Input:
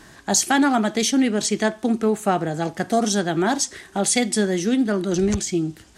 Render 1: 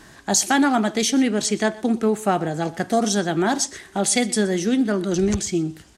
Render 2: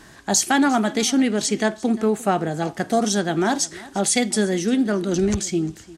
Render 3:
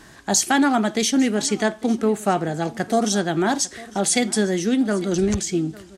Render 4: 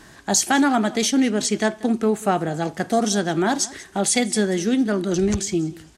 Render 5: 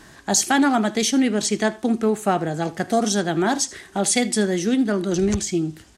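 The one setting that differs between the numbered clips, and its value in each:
delay, time: 123 ms, 350 ms, 851 ms, 186 ms, 77 ms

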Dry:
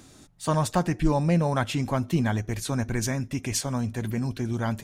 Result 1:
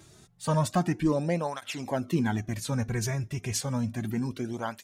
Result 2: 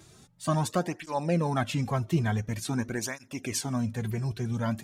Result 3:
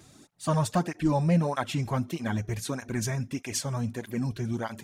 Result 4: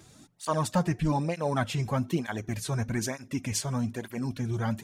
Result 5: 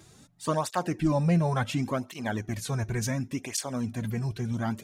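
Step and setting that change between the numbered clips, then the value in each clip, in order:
cancelling through-zero flanger, nulls at: 0.31 Hz, 0.47 Hz, 1.6 Hz, 1.1 Hz, 0.7 Hz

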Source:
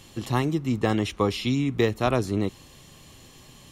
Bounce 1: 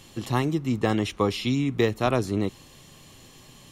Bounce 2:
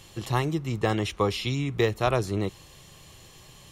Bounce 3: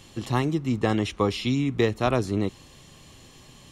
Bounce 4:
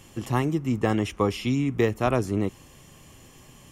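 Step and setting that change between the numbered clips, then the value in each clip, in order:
peaking EQ, frequency: 61 Hz, 250 Hz, 14 kHz, 4 kHz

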